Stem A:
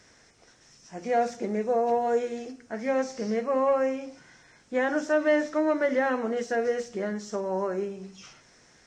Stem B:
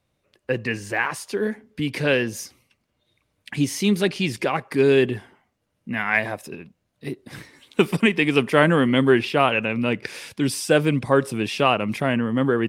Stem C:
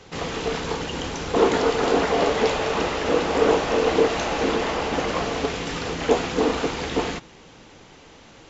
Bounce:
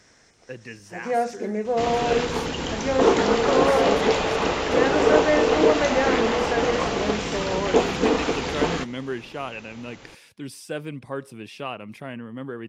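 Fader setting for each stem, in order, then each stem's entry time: +1.5 dB, -13.5 dB, +0.5 dB; 0.00 s, 0.00 s, 1.65 s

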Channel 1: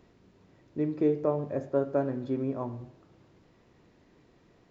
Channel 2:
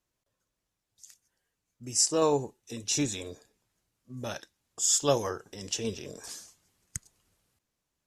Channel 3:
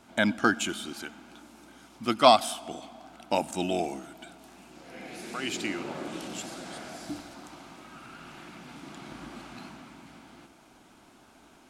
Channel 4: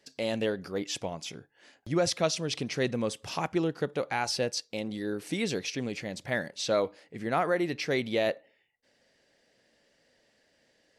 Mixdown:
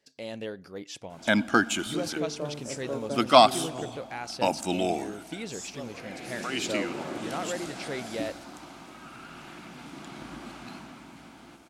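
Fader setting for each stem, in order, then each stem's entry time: -7.5 dB, -17.0 dB, +1.5 dB, -7.0 dB; 1.15 s, 0.70 s, 1.10 s, 0.00 s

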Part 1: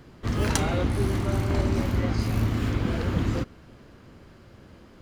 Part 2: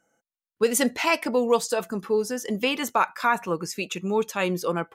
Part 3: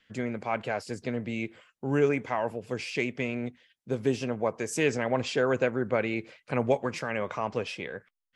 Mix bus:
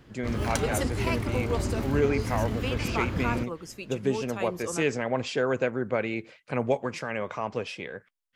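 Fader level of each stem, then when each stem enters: -5.0 dB, -10.0 dB, -0.5 dB; 0.00 s, 0.00 s, 0.00 s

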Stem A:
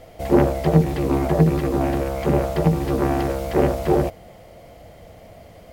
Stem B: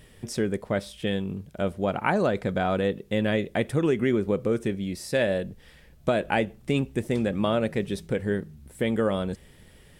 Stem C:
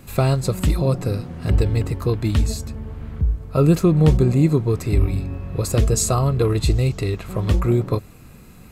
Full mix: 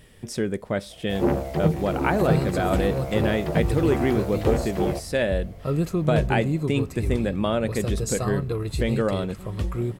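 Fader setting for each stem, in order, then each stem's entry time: -6.5 dB, +0.5 dB, -9.0 dB; 0.90 s, 0.00 s, 2.10 s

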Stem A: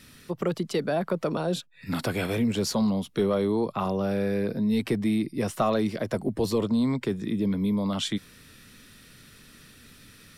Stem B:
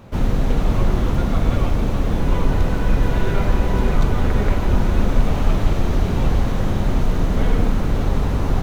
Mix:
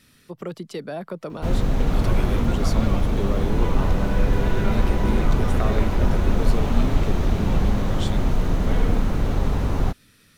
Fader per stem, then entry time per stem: -5.0 dB, -2.5 dB; 0.00 s, 1.30 s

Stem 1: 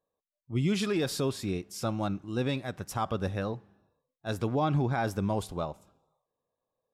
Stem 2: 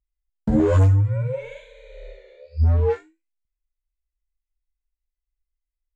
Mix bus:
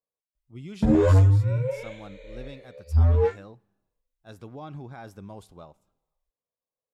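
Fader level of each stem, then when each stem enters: -12.5 dB, -1.0 dB; 0.00 s, 0.35 s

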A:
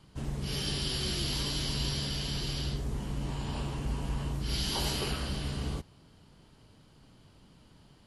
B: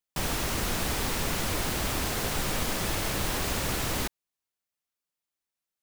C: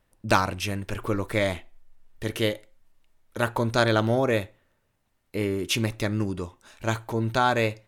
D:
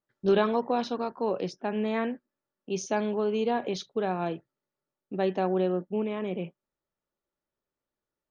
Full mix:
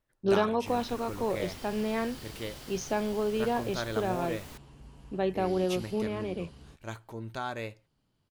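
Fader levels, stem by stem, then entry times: -17.5 dB, -18.0 dB, -13.5 dB, -2.0 dB; 0.95 s, 0.50 s, 0.00 s, 0.00 s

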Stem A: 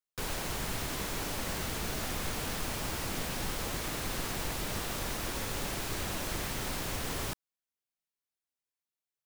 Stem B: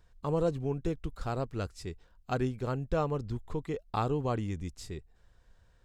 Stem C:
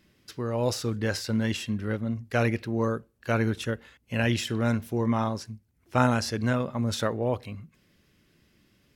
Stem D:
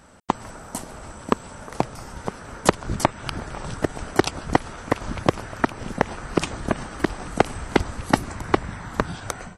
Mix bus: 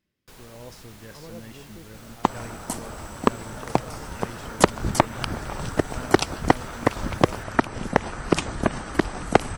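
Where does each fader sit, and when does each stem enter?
-12.5 dB, -14.5 dB, -16.5 dB, +1.0 dB; 0.10 s, 0.90 s, 0.00 s, 1.95 s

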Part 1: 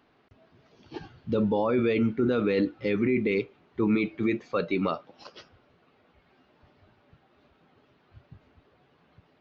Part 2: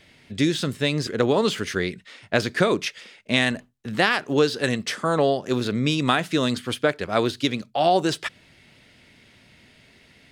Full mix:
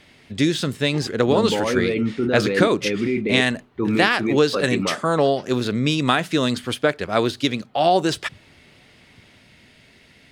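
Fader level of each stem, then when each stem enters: +2.5 dB, +2.0 dB; 0.00 s, 0.00 s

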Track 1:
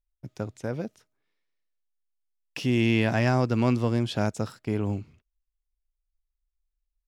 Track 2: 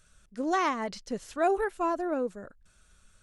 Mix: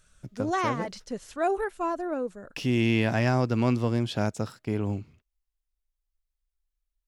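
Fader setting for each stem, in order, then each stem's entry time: -1.0 dB, -0.5 dB; 0.00 s, 0.00 s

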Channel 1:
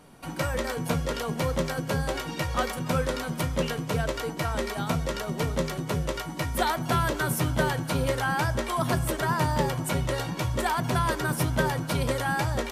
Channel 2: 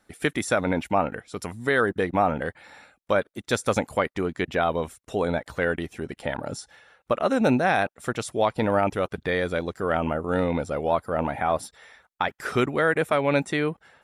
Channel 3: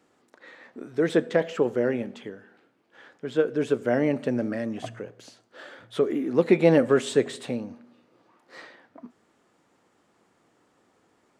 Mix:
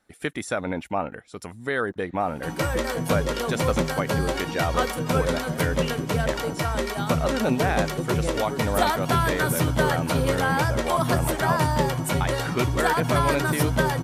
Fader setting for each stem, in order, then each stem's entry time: +3.0 dB, -4.0 dB, -14.0 dB; 2.20 s, 0.00 s, 1.60 s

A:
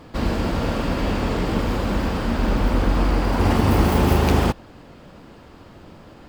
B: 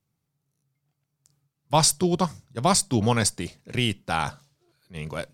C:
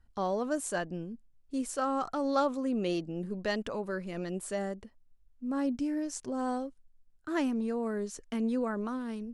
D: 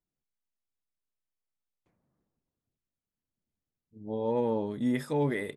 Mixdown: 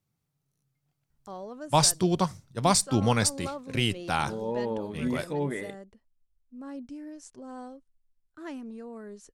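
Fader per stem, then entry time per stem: mute, -2.0 dB, -9.0 dB, -2.0 dB; mute, 0.00 s, 1.10 s, 0.20 s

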